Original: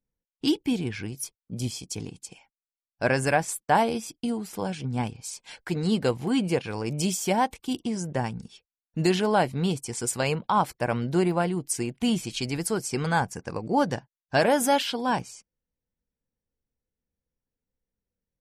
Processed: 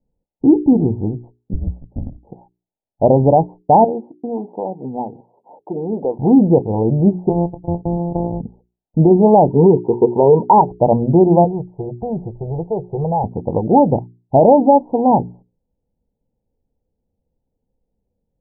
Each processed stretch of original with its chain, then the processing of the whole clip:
1.53–2.18 LPF 1300 Hz + frequency shift -190 Hz + upward expander, over -46 dBFS
3.84–6.19 HPF 340 Hz + compressor 2:1, threshold -35 dBFS
7.29–8.41 sample sorter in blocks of 256 samples + LPF 1100 Hz 24 dB/oct + compressor 2:1, threshold -33 dBFS
9.48–10.61 HPF 130 Hz + bell 1400 Hz +4 dB 2.2 oct + small resonant body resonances 410/940/3200 Hz, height 13 dB, ringing for 35 ms
11.44–13.24 fixed phaser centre 650 Hz, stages 4 + compressor 2:1, threshold -32 dBFS
whole clip: steep low-pass 910 Hz 96 dB/oct; notches 60/120/180/240/300/360/420 Hz; maximiser +16 dB; gain -1 dB

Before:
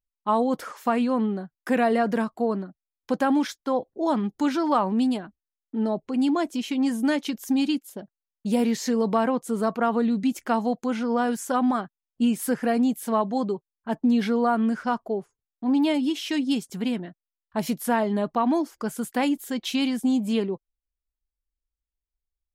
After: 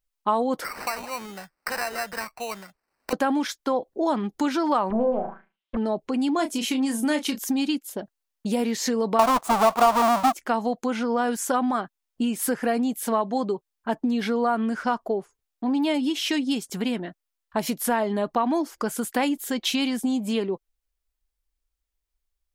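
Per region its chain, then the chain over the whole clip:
0.64–3.13 passive tone stack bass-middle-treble 10-0-10 + sample-rate reducer 3400 Hz + three-band squash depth 70%
4.9–5.77 minimum comb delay 5.2 ms + flutter echo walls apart 6.3 m, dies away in 0.32 s + envelope low-pass 700–3800 Hz down, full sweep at -26 dBFS
6.36–7.39 bell 9800 Hz +7 dB 1 oct + doubler 30 ms -8.5 dB
9.19–10.34 half-waves squared off + band shelf 910 Hz +13 dB 1.2 oct
whole clip: compressor 2.5:1, threshold -29 dBFS; bell 130 Hz -7.5 dB 1.8 oct; gain +7.5 dB

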